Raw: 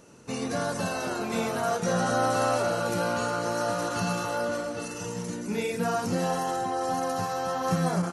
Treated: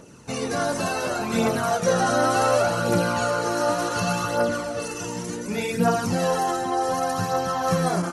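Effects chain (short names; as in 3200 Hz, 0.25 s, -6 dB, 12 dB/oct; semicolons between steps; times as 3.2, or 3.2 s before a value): phaser 0.68 Hz, delay 3.4 ms, feedback 45%; gain +4 dB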